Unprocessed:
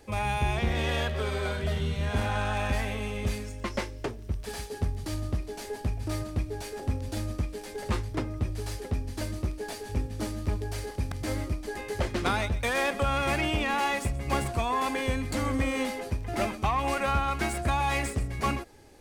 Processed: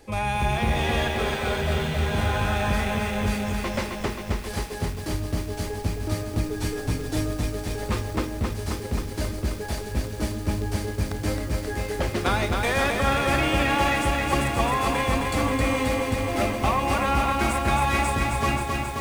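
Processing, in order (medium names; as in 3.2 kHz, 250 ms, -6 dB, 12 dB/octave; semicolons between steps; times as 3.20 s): 6.43–7.40 s: comb 6.6 ms, depth 96%; on a send at -11.5 dB: reverberation RT60 0.65 s, pre-delay 4 ms; on the sum: bit-crushed delay 266 ms, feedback 80%, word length 8-bit, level -4 dB; trim +2.5 dB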